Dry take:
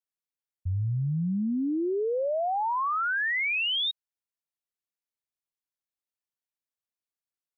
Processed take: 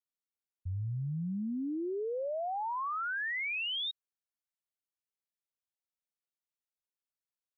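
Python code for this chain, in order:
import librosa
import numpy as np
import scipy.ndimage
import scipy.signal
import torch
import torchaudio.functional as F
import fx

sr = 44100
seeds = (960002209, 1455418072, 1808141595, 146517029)

y = fx.high_shelf(x, sr, hz=3100.0, db=9.5, at=(0.87, 1.75))
y = y * librosa.db_to_amplitude(-7.5)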